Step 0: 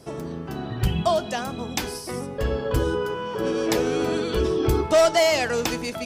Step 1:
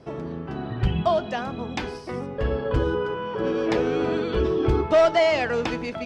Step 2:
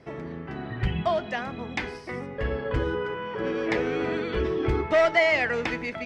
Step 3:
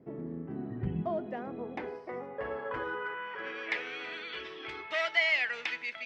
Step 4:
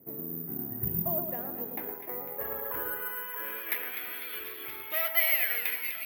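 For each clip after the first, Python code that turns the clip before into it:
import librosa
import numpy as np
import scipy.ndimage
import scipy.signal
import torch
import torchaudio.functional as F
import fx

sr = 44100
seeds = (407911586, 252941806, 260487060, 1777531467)

y1 = scipy.signal.sosfilt(scipy.signal.butter(2, 3000.0, 'lowpass', fs=sr, output='sos'), x)
y2 = fx.peak_eq(y1, sr, hz=2000.0, db=11.5, octaves=0.53)
y2 = F.gain(torch.from_numpy(y2), -4.0).numpy()
y3 = fx.filter_sweep_bandpass(y2, sr, from_hz=250.0, to_hz=3100.0, start_s=0.98, end_s=3.97, q=1.3)
y4 = fx.echo_split(y3, sr, split_hz=1900.0, low_ms=114, high_ms=250, feedback_pct=52, wet_db=-6.5)
y4 = (np.kron(y4[::3], np.eye(3)[0]) * 3)[:len(y4)]
y4 = F.gain(torch.from_numpy(y4), -3.5).numpy()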